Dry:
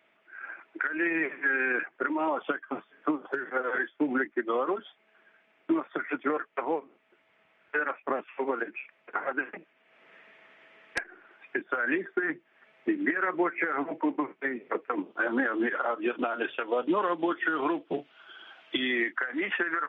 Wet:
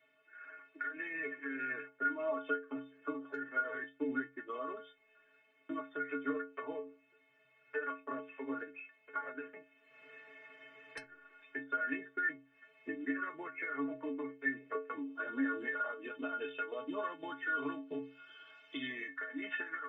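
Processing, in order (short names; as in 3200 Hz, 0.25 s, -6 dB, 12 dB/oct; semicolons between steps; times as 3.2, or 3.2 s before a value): bell 800 Hz -11 dB 0.23 oct; in parallel at -2.5 dB: compressor, threshold -41 dBFS, peak gain reduction 18 dB; on the sum: metallic resonator 130 Hz, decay 0.48 s, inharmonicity 0.03; 9.21–11.04 three-band squash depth 40%; gain +3 dB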